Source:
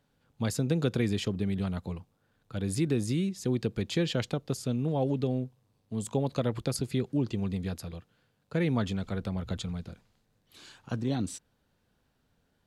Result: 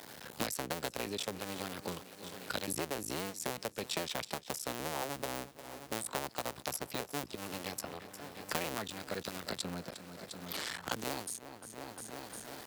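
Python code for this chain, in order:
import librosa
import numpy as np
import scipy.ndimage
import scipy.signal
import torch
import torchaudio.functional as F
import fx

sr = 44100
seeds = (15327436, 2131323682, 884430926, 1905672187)

p1 = fx.cycle_switch(x, sr, every=2, mode='muted')
p2 = fx.highpass(p1, sr, hz=480.0, slope=6)
p3 = fx.high_shelf(p2, sr, hz=6400.0, db=8.0)
p4 = p3 + fx.echo_feedback(p3, sr, ms=353, feedback_pct=48, wet_db=-20, dry=0)
p5 = fx.formant_shift(p4, sr, semitones=2)
p6 = fx.band_squash(p5, sr, depth_pct=100)
y = p6 * librosa.db_to_amplitude(-2.5)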